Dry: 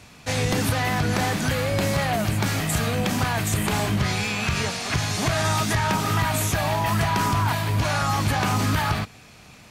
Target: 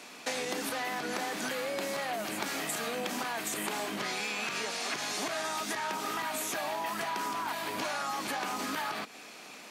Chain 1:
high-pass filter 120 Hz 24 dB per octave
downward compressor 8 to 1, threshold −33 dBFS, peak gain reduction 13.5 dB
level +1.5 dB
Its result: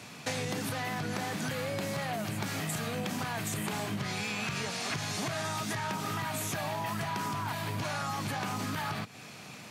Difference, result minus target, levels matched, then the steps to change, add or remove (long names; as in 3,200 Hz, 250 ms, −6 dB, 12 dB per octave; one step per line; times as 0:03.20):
125 Hz band +16.5 dB
change: high-pass filter 260 Hz 24 dB per octave